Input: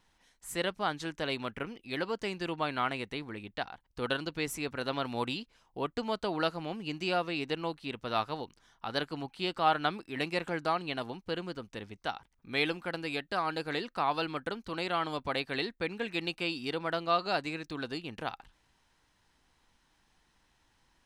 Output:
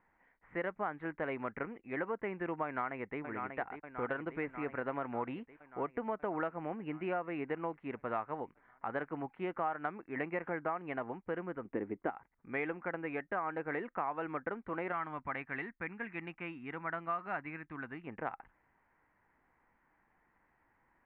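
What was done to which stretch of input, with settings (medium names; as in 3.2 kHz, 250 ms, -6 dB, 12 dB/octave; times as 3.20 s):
2.65–3.20 s: echo throw 590 ms, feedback 70%, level -9.5 dB
11.65–12.10 s: peaking EQ 320 Hz +14.5 dB 1.5 oct
14.92–18.07 s: peaking EQ 480 Hz -12.5 dB 1.3 oct
whole clip: elliptic low-pass 2.1 kHz, stop band 60 dB; bass shelf 130 Hz -10 dB; compression 6:1, threshold -33 dBFS; trim +1 dB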